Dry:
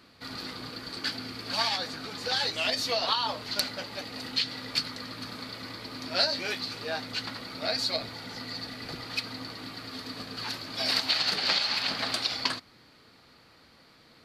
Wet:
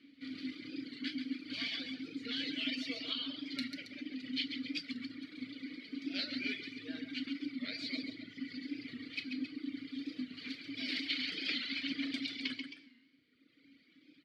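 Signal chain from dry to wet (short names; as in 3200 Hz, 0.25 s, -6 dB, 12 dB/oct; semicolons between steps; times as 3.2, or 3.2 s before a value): vowel filter i; loudspeakers at several distances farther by 47 m -5 dB, 92 m -9 dB; FDN reverb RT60 1.5 s, low-frequency decay 0.95×, high-frequency decay 0.75×, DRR 4 dB; reverb removal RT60 1.6 s; record warp 45 rpm, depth 100 cents; gain +5 dB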